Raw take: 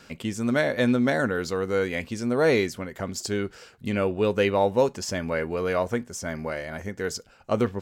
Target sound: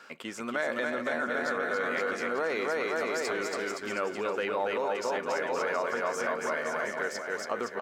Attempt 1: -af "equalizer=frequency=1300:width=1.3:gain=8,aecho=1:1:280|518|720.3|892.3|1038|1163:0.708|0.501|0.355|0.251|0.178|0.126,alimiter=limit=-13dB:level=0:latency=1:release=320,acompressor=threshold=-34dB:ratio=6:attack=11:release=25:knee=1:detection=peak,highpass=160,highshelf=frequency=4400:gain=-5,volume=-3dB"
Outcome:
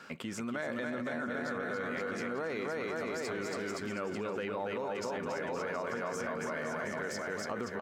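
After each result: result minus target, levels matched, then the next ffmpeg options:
125 Hz band +11.0 dB; downward compressor: peak gain reduction +7.5 dB
-af "equalizer=frequency=1300:width=1.3:gain=8,aecho=1:1:280|518|720.3|892.3|1038|1163:0.708|0.501|0.355|0.251|0.178|0.126,alimiter=limit=-13dB:level=0:latency=1:release=320,acompressor=threshold=-34dB:ratio=6:attack=11:release=25:knee=1:detection=peak,highpass=380,highshelf=frequency=4400:gain=-5,volume=-3dB"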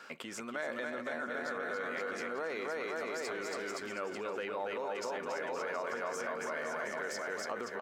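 downward compressor: peak gain reduction +7.5 dB
-af "equalizer=frequency=1300:width=1.3:gain=8,aecho=1:1:280|518|720.3|892.3|1038|1163:0.708|0.501|0.355|0.251|0.178|0.126,alimiter=limit=-13dB:level=0:latency=1:release=320,acompressor=threshold=-25dB:ratio=6:attack=11:release=25:knee=1:detection=peak,highpass=380,highshelf=frequency=4400:gain=-5,volume=-3dB"

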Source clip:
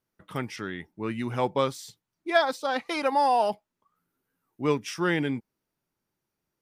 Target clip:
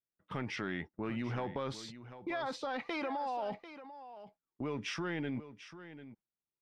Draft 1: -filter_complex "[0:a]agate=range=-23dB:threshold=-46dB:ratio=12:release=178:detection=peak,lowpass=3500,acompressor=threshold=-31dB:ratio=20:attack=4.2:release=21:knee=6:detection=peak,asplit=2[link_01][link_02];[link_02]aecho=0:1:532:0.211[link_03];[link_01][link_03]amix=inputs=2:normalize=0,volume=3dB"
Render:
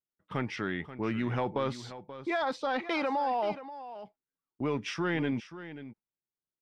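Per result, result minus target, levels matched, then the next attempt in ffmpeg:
downward compressor: peak gain reduction −7 dB; echo 211 ms early
-filter_complex "[0:a]agate=range=-23dB:threshold=-46dB:ratio=12:release=178:detection=peak,lowpass=3500,acompressor=threshold=-38.5dB:ratio=20:attack=4.2:release=21:knee=6:detection=peak,asplit=2[link_01][link_02];[link_02]aecho=0:1:532:0.211[link_03];[link_01][link_03]amix=inputs=2:normalize=0,volume=3dB"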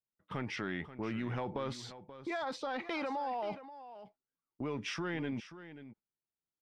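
echo 211 ms early
-filter_complex "[0:a]agate=range=-23dB:threshold=-46dB:ratio=12:release=178:detection=peak,lowpass=3500,acompressor=threshold=-38.5dB:ratio=20:attack=4.2:release=21:knee=6:detection=peak,asplit=2[link_01][link_02];[link_02]aecho=0:1:743:0.211[link_03];[link_01][link_03]amix=inputs=2:normalize=0,volume=3dB"

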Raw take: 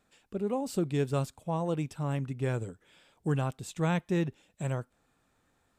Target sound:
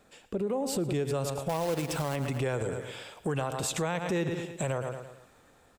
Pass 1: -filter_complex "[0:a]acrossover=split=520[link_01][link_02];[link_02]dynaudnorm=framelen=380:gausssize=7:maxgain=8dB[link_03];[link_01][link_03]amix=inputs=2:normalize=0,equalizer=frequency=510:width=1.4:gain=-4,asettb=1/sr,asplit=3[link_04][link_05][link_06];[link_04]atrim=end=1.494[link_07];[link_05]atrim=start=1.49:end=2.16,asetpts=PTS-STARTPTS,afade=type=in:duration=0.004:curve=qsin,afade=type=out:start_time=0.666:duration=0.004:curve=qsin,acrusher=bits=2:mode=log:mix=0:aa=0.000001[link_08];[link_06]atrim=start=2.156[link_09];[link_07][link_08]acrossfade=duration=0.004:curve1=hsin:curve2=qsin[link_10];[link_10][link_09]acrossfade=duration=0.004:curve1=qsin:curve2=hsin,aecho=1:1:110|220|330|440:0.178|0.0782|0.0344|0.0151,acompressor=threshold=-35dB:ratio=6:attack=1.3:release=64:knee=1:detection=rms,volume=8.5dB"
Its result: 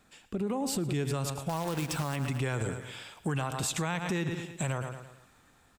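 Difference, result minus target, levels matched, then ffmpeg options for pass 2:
500 Hz band −4.5 dB
-filter_complex "[0:a]acrossover=split=520[link_01][link_02];[link_02]dynaudnorm=framelen=380:gausssize=7:maxgain=8dB[link_03];[link_01][link_03]amix=inputs=2:normalize=0,equalizer=frequency=510:width=1.4:gain=5.5,asettb=1/sr,asplit=3[link_04][link_05][link_06];[link_04]atrim=end=1.494[link_07];[link_05]atrim=start=1.49:end=2.16,asetpts=PTS-STARTPTS,afade=type=in:duration=0.004:curve=qsin,afade=type=out:start_time=0.666:duration=0.004:curve=qsin,acrusher=bits=2:mode=log:mix=0:aa=0.000001[link_08];[link_06]atrim=start=2.156[link_09];[link_07][link_08]acrossfade=duration=0.004:curve1=hsin:curve2=qsin[link_10];[link_10][link_09]acrossfade=duration=0.004:curve1=qsin:curve2=hsin,aecho=1:1:110|220|330|440:0.178|0.0782|0.0344|0.0151,acompressor=threshold=-35dB:ratio=6:attack=1.3:release=64:knee=1:detection=rms,volume=8.5dB"

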